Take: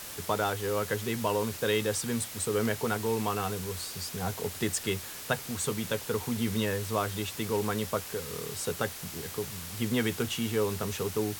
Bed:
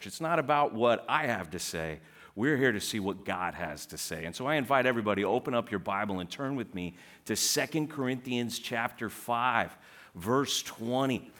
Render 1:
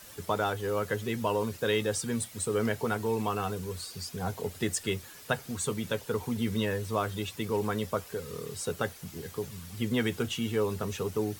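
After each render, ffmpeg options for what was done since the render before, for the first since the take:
-af "afftdn=nr=10:nf=-42"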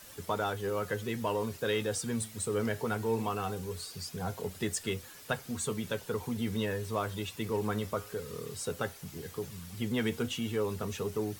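-filter_complex "[0:a]asplit=2[a][b];[b]asoftclip=type=tanh:threshold=-29dB,volume=-8dB[c];[a][c]amix=inputs=2:normalize=0,flanger=delay=3.4:depth=6.6:regen=89:speed=0.19:shape=triangular"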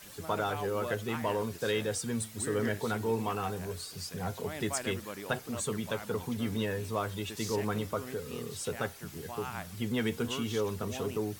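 -filter_complex "[1:a]volume=-13.5dB[a];[0:a][a]amix=inputs=2:normalize=0"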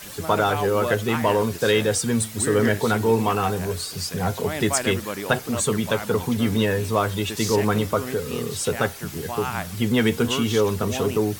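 -af "volume=11.5dB"

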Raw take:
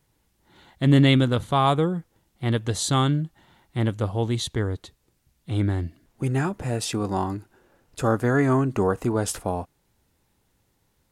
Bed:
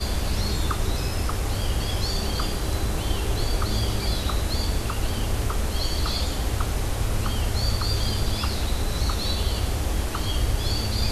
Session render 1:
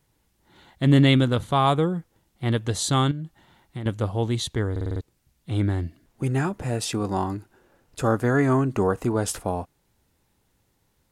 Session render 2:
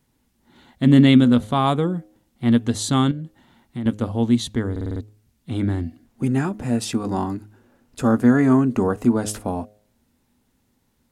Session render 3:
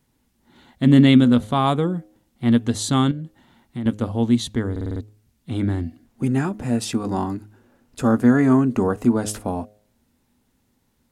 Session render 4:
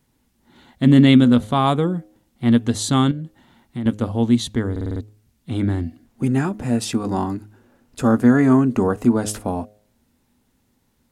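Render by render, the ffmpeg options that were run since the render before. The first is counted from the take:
-filter_complex "[0:a]asettb=1/sr,asplit=3[a][b][c];[a]atrim=end=3.114[d];[b]atrim=start=3.11:end=3.86,asetpts=PTS-STARTPTS,afade=t=in:d=0.004:c=qsin,afade=t=out:st=0.746:d=0.004:c=qsin,acompressor=threshold=-29dB:ratio=6:attack=3.2:release=140:knee=1:detection=peak[e];[c]atrim=start=3.856[f];[d][e]acrossfade=d=0.004:c1=hsin:c2=qsin[g];[g][f]acrossfade=d=0.004:c1=qsin:c2=hsin,asplit=7[h][i][j][k][l][m][n];[h]atrim=end=4.762[o];[i]atrim=start=4.708:end=4.762[p];[j]atrim=start=4.708:end=4.762[q];[k]atrim=start=4.708:end=4.762[r];[l]atrim=start=4.708:end=4.762[s];[m]atrim=start=4.708:end=4.762[t];[n]atrim=start=5.008[u];[o][p]acrossfade=d=0.004:c1=hsin:c2=hsin[v];[v][q]acrossfade=d=0.004:c1=hsin:c2=hsin[w];[w][r]acrossfade=d=0.004:c1=hsin:c2=hsin[x];[x][s]acrossfade=d=0.004:c1=hsin:c2=hsin[y];[y][t]acrossfade=d=0.004:c1=hsin:c2=hsin[z];[z][u]acrossfade=d=0.004:c1=hsin:c2=hsin"
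-af "equalizer=f=240:t=o:w=0.31:g=14.5,bandreject=f=105:t=h:w=4,bandreject=f=210:t=h:w=4,bandreject=f=315:t=h:w=4,bandreject=f=420:t=h:w=4,bandreject=f=525:t=h:w=4,bandreject=f=630:t=h:w=4,bandreject=f=735:t=h:w=4"
-af anull
-af "volume=1.5dB,alimiter=limit=-3dB:level=0:latency=1"

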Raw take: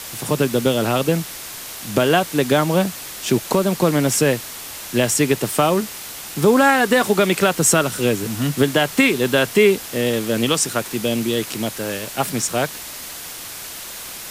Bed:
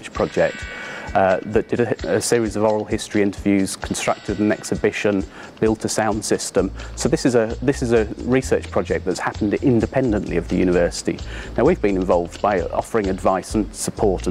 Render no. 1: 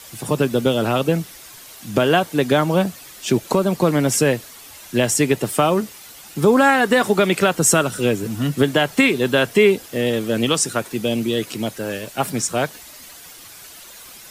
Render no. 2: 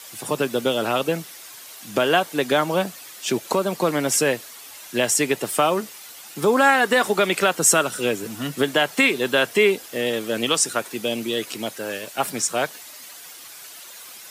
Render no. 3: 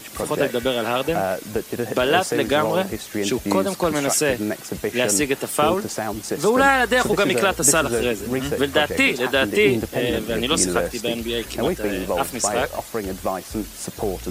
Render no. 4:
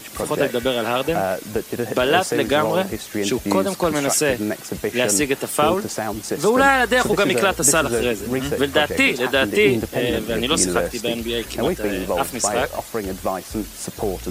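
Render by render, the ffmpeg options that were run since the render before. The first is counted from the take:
-af "afftdn=nr=10:nf=-33"
-af "highpass=f=490:p=1"
-filter_complex "[1:a]volume=-7dB[a];[0:a][a]amix=inputs=2:normalize=0"
-af "volume=1dB,alimiter=limit=-2dB:level=0:latency=1"

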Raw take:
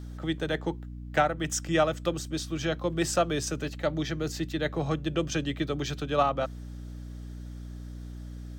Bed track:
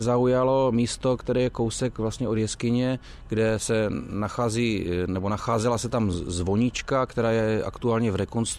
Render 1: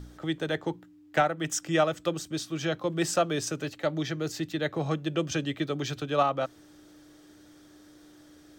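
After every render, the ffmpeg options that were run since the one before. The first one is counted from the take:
-af "bandreject=f=60:t=h:w=4,bandreject=f=120:t=h:w=4,bandreject=f=180:t=h:w=4,bandreject=f=240:t=h:w=4"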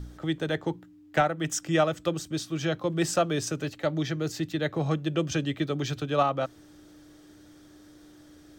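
-af "lowshelf=f=180:g=6"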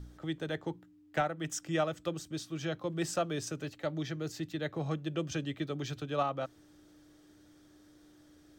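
-af "volume=-7.5dB"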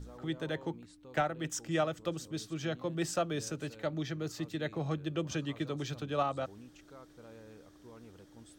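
-filter_complex "[1:a]volume=-30dB[a];[0:a][a]amix=inputs=2:normalize=0"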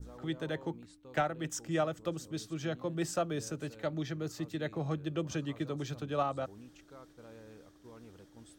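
-af "agate=range=-33dB:threshold=-55dB:ratio=3:detection=peak,adynamicequalizer=threshold=0.00251:dfrequency=3200:dqfactor=0.73:tfrequency=3200:tqfactor=0.73:attack=5:release=100:ratio=0.375:range=2.5:mode=cutabove:tftype=bell"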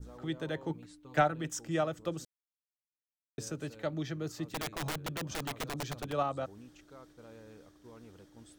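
-filter_complex "[0:a]asettb=1/sr,asplit=3[a][b][c];[a]atrim=end=0.694[d];[b]atrim=start=0.69:end=1.42,asetpts=PTS-STARTPTS,afade=t=in:d=0.004:c=qsin,afade=t=out:st=0.726:d=0.004:c=qsin,aecho=1:1:6.8:0.8,atrim=end_sample=32193[e];[c]atrim=start=1.416[f];[d][e]acrossfade=d=0.004:c1=hsin:c2=qsin[g];[g][f]acrossfade=d=0.004:c1=qsin:c2=hsin,asplit=3[h][i][j];[h]afade=t=out:st=4.47:d=0.02[k];[i]aeval=exprs='(mod(33.5*val(0)+1,2)-1)/33.5':c=same,afade=t=in:st=4.47:d=0.02,afade=t=out:st=6.11:d=0.02[l];[j]afade=t=in:st=6.11:d=0.02[m];[k][l][m]amix=inputs=3:normalize=0,asplit=3[n][o][p];[n]atrim=end=2.25,asetpts=PTS-STARTPTS,afade=t=out:st=2.246:d=0.004:c=hsin[q];[o]atrim=start=2.25:end=3.38,asetpts=PTS-STARTPTS,volume=0[r];[p]atrim=start=3.38,asetpts=PTS-STARTPTS,afade=t=in:d=0.004:c=hsin[s];[q][r][s]concat=n=3:v=0:a=1"

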